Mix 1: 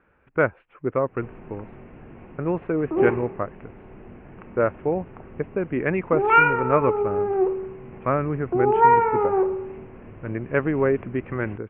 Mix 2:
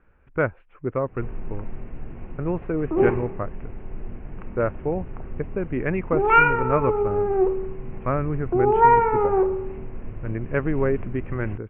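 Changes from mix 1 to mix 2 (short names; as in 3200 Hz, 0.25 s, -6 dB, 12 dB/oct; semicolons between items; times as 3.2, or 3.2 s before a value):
speech -3.0 dB; master: remove HPF 190 Hz 6 dB/oct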